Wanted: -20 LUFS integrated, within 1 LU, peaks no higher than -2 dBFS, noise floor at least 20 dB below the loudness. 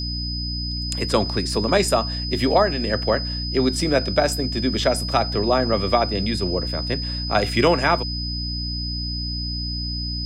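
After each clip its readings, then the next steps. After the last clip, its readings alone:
hum 60 Hz; highest harmonic 300 Hz; hum level -26 dBFS; steady tone 5 kHz; tone level -28 dBFS; loudness -22.0 LUFS; peak level -6.0 dBFS; loudness target -20.0 LUFS
-> de-hum 60 Hz, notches 5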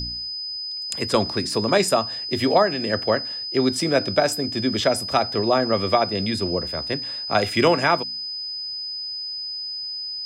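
hum not found; steady tone 5 kHz; tone level -28 dBFS
-> band-stop 5 kHz, Q 30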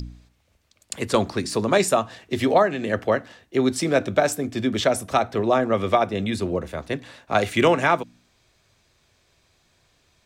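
steady tone not found; loudness -22.5 LUFS; peak level -6.5 dBFS; loudness target -20.0 LUFS
-> trim +2.5 dB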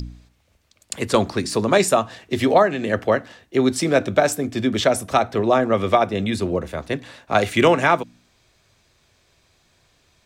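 loudness -20.0 LUFS; peak level -4.0 dBFS; noise floor -62 dBFS

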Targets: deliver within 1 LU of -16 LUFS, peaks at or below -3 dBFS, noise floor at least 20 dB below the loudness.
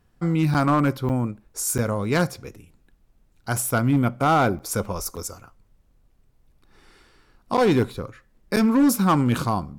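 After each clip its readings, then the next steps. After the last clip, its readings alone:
clipped samples 1.2%; clipping level -13.0 dBFS; dropouts 7; longest dropout 7.6 ms; loudness -22.5 LUFS; peak level -13.0 dBFS; loudness target -16.0 LUFS
-> clip repair -13 dBFS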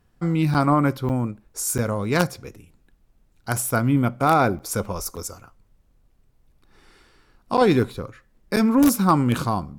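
clipped samples 0.0%; dropouts 7; longest dropout 7.6 ms
-> interpolate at 0.54/1.09/1.78/4.59/5.16/7.57/8.56 s, 7.6 ms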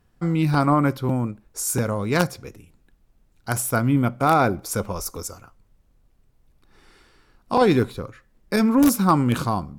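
dropouts 0; loudness -21.5 LUFS; peak level -4.0 dBFS; loudness target -16.0 LUFS
-> trim +5.5 dB; peak limiter -3 dBFS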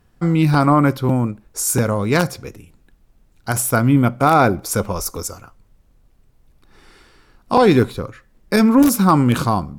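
loudness -16.5 LUFS; peak level -3.0 dBFS; noise floor -56 dBFS

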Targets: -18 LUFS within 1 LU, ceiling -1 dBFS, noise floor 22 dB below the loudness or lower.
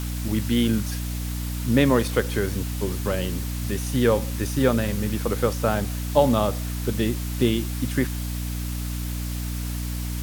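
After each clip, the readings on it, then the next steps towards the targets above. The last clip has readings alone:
hum 60 Hz; highest harmonic 300 Hz; hum level -26 dBFS; noise floor -29 dBFS; noise floor target -47 dBFS; loudness -24.5 LUFS; peak level -4.5 dBFS; loudness target -18.0 LUFS
-> hum notches 60/120/180/240/300 Hz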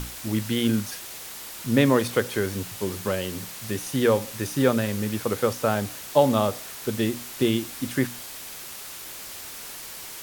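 hum not found; noise floor -39 dBFS; noise floor target -48 dBFS
-> noise print and reduce 9 dB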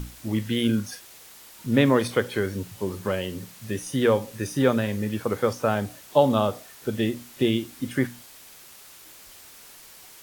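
noise floor -48 dBFS; loudness -25.5 LUFS; peak level -6.0 dBFS; loudness target -18.0 LUFS
-> trim +7.5 dB; peak limiter -1 dBFS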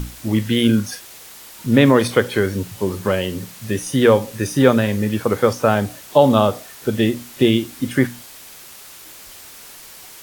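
loudness -18.0 LUFS; peak level -1.0 dBFS; noise floor -41 dBFS

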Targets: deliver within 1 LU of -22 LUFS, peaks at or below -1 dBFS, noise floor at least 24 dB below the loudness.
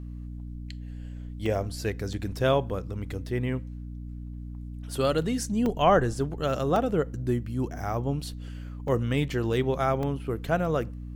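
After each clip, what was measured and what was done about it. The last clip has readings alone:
dropouts 6; longest dropout 2.2 ms; hum 60 Hz; highest harmonic 300 Hz; hum level -35 dBFS; loudness -28.0 LUFS; peak level -9.5 dBFS; loudness target -22.0 LUFS
-> interpolate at 1.46/2.13/5.66/6.76/8.88/10.03 s, 2.2 ms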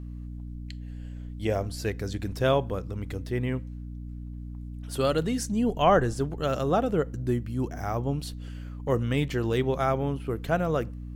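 dropouts 0; hum 60 Hz; highest harmonic 300 Hz; hum level -35 dBFS
-> hum notches 60/120/180/240/300 Hz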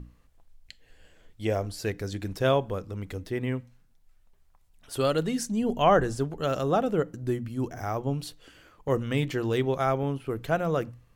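hum not found; loudness -28.5 LUFS; peak level -9.5 dBFS; loudness target -22.0 LUFS
-> trim +6.5 dB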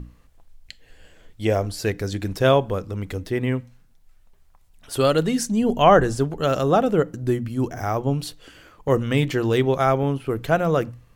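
loudness -22.0 LUFS; peak level -3.0 dBFS; noise floor -55 dBFS

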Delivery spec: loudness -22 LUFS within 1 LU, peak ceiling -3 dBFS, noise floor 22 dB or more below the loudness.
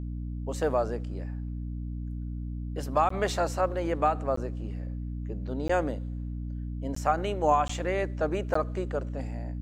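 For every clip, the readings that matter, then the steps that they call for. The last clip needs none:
dropouts 6; longest dropout 14 ms; hum 60 Hz; highest harmonic 300 Hz; hum level -32 dBFS; loudness -30.5 LUFS; peak level -11.5 dBFS; loudness target -22.0 LUFS
-> interpolate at 3.09/4.36/5.68/6.95/7.68/8.54 s, 14 ms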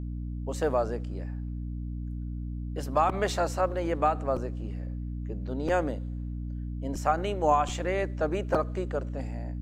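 dropouts 0; hum 60 Hz; highest harmonic 300 Hz; hum level -32 dBFS
-> hum notches 60/120/180/240/300 Hz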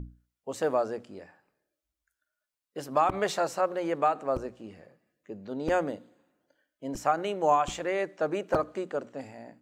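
hum not found; loudness -29.5 LUFS; peak level -12.5 dBFS; loudness target -22.0 LUFS
-> trim +7.5 dB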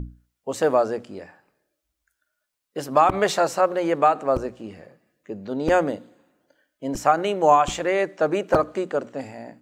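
loudness -22.0 LUFS; peak level -5.0 dBFS; noise floor -80 dBFS

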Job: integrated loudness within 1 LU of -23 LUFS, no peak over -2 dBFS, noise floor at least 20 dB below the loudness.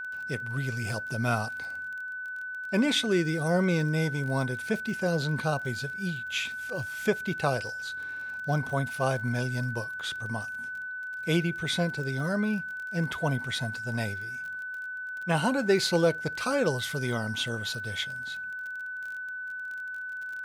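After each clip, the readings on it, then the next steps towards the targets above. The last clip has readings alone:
tick rate 31 per s; steady tone 1.5 kHz; tone level -34 dBFS; loudness -30.0 LUFS; peak level -12.5 dBFS; loudness target -23.0 LUFS
-> de-click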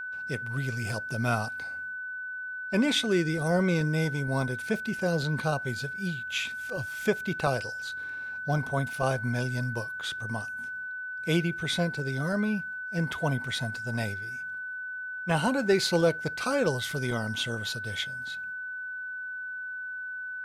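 tick rate 0.098 per s; steady tone 1.5 kHz; tone level -34 dBFS
-> band-stop 1.5 kHz, Q 30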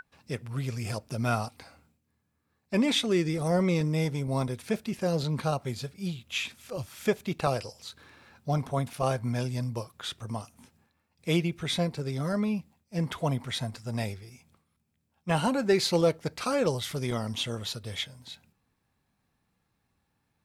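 steady tone not found; loudness -30.0 LUFS; peak level -13.0 dBFS; loudness target -23.0 LUFS
-> trim +7 dB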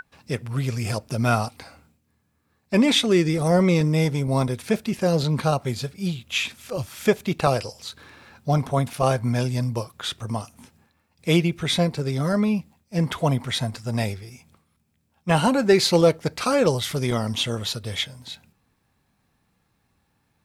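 loudness -23.0 LUFS; peak level -6.0 dBFS; noise floor -70 dBFS

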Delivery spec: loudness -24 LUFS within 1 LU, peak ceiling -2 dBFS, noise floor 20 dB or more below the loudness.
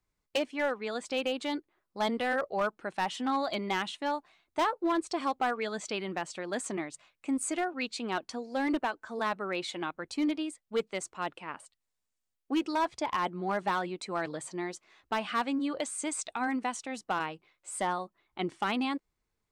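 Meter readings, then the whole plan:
clipped samples 0.9%; clipping level -23.0 dBFS; loudness -33.0 LUFS; peak level -23.0 dBFS; loudness target -24.0 LUFS
-> clip repair -23 dBFS; trim +9 dB

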